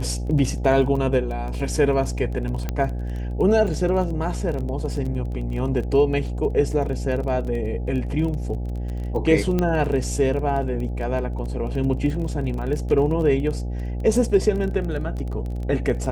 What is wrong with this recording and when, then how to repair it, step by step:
buzz 60 Hz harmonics 14 -27 dBFS
crackle 21/s -29 dBFS
2.69 pop -12 dBFS
9.59 pop -10 dBFS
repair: de-click; de-hum 60 Hz, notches 14

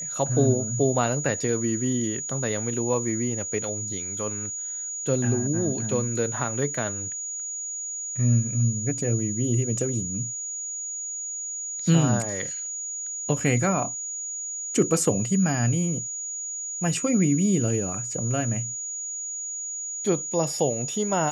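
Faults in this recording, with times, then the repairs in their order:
tone 6800 Hz -30 dBFS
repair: notch 6800 Hz, Q 30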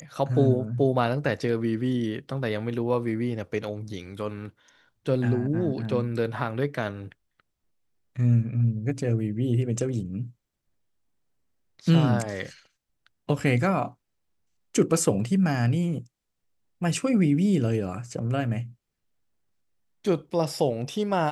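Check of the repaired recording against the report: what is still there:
none

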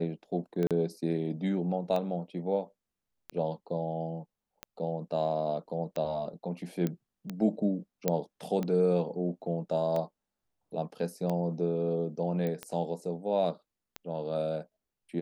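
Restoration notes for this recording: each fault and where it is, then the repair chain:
tick 45 rpm -21 dBFS
0.67–0.71 gap 37 ms
6.87 pop -19 dBFS
8.08 pop -12 dBFS
12.47 pop -22 dBFS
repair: de-click; interpolate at 0.67, 37 ms

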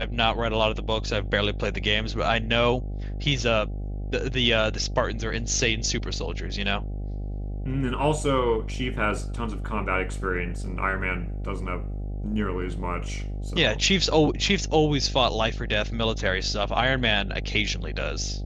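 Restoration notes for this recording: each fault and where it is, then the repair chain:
buzz 50 Hz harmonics 16 -31 dBFS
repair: de-hum 50 Hz, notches 16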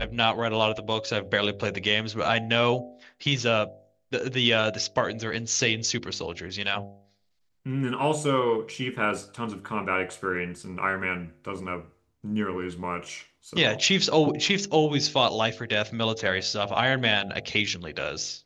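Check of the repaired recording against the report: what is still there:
none

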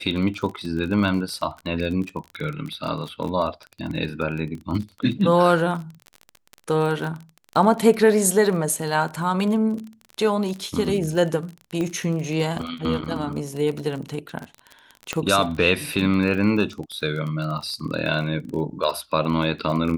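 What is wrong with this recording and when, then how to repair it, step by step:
crackle 30/s -28 dBFS
11.81 pop -16 dBFS
15.13 pop -10 dBFS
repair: de-click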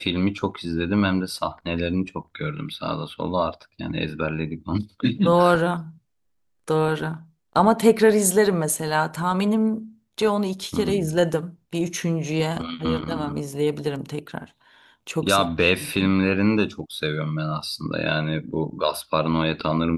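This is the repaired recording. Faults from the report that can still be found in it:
11.81 pop

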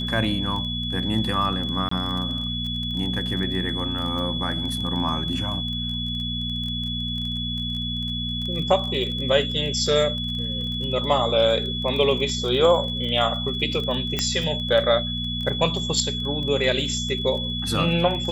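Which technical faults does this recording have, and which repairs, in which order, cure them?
crackle 22/s -29 dBFS
hum 60 Hz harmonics 4 -30 dBFS
tone 3400 Hz -28 dBFS
1.89–1.91 gap 24 ms
14.19 pop -7 dBFS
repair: de-click; de-hum 60 Hz, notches 4; notch 3400 Hz, Q 30; interpolate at 1.89, 24 ms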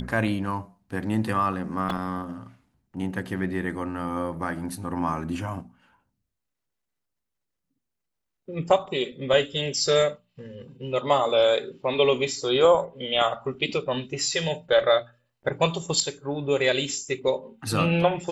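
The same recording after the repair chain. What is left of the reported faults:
14.19 pop

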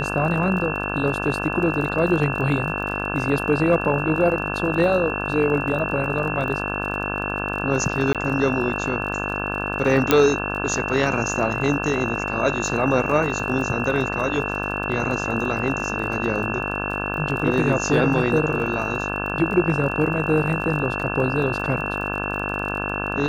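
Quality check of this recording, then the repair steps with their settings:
buzz 50 Hz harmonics 34 -28 dBFS
crackle 31/s -30 dBFS
tone 2700 Hz -28 dBFS
8.13–8.15 gap 17 ms
10.11 pop -1 dBFS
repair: de-click; notch 2700 Hz, Q 30; de-hum 50 Hz, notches 34; interpolate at 8.13, 17 ms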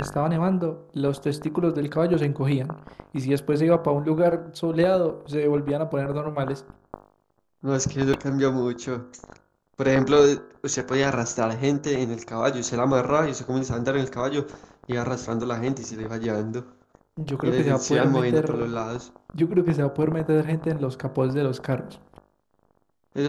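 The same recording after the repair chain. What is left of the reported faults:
none

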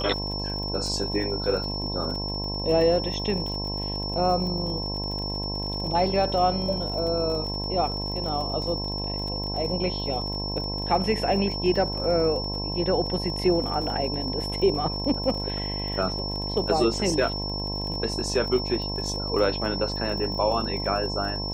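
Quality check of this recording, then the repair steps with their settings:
buzz 50 Hz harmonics 21 -32 dBFS
crackle 38/s -33 dBFS
tone 5400 Hz -31 dBFS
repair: de-click; de-hum 50 Hz, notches 21; notch 5400 Hz, Q 30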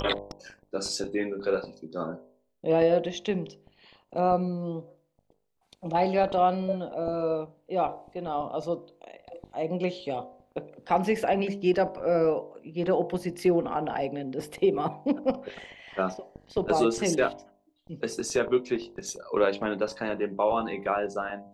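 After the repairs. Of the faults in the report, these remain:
none

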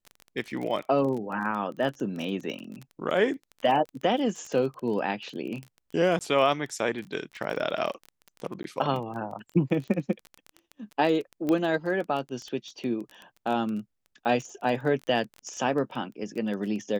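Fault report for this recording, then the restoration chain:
crackle 23/s -32 dBFS
6.19–6.21 gap 18 ms
8.63–8.64 gap 12 ms
11.49 pop -16 dBFS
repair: de-click; interpolate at 6.19, 18 ms; interpolate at 8.63, 12 ms

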